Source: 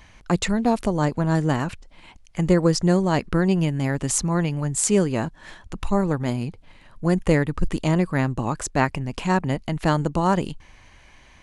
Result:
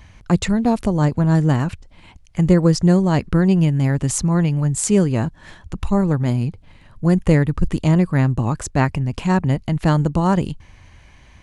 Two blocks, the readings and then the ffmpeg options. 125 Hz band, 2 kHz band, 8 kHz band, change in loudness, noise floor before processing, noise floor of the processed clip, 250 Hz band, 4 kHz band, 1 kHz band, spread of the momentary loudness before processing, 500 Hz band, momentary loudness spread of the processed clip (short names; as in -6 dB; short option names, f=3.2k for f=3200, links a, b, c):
+7.0 dB, 0.0 dB, 0.0 dB, +4.5 dB, -51 dBFS, -48 dBFS, +5.0 dB, 0.0 dB, +0.5 dB, 8 LU, +1.5 dB, 8 LU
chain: -af "equalizer=f=90:t=o:w=2.3:g=10"